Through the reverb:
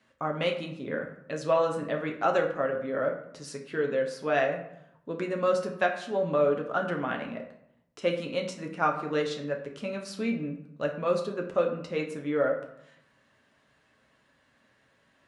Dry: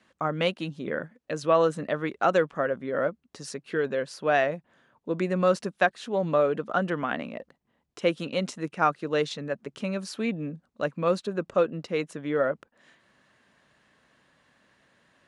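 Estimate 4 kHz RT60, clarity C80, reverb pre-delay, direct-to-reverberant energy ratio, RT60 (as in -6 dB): 0.45 s, 11.5 dB, 7 ms, 1.5 dB, 0.75 s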